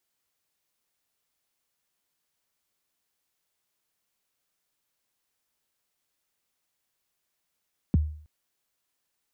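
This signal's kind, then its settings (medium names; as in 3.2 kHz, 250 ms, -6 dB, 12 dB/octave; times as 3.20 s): kick drum length 0.32 s, from 280 Hz, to 76 Hz, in 20 ms, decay 0.52 s, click off, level -15 dB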